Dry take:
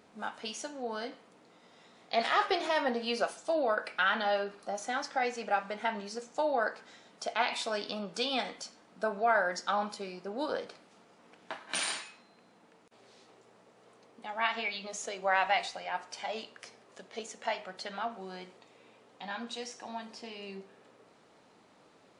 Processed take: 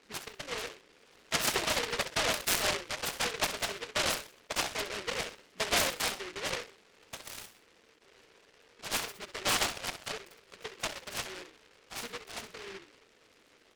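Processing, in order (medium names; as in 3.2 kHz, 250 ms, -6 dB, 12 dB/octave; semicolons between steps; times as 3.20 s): resonances exaggerated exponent 3; frequency-shifting echo 103 ms, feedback 31%, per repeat -44 Hz, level -10 dB; time stretch by phase-locked vocoder 0.62×; elliptic band-pass 170–1700 Hz; delay time shaken by noise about 1.9 kHz, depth 0.36 ms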